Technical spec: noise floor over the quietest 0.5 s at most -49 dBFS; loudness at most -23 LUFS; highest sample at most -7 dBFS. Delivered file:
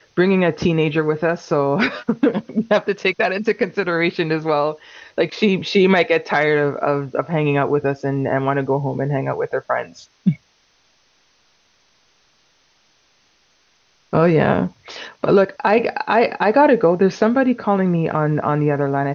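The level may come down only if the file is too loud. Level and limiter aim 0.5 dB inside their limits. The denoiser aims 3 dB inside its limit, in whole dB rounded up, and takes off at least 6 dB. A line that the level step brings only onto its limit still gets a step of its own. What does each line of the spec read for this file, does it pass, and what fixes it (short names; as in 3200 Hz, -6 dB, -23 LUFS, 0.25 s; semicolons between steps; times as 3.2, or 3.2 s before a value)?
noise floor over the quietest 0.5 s -60 dBFS: OK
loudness -18.5 LUFS: fail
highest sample -4.5 dBFS: fail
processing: gain -5 dB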